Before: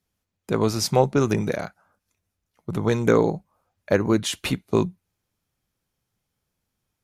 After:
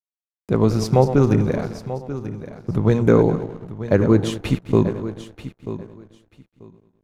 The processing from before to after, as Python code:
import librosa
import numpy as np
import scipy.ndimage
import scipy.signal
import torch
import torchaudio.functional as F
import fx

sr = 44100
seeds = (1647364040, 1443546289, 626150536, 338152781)

p1 = fx.reverse_delay_fb(x, sr, ms=105, feedback_pct=57, wet_db=-10.5)
p2 = np.sign(p1) * np.maximum(np.abs(p1) - 10.0 ** (-44.0 / 20.0), 0.0)
p3 = fx.tilt_eq(p2, sr, slope=-2.5)
y = p3 + fx.echo_feedback(p3, sr, ms=937, feedback_pct=18, wet_db=-13, dry=0)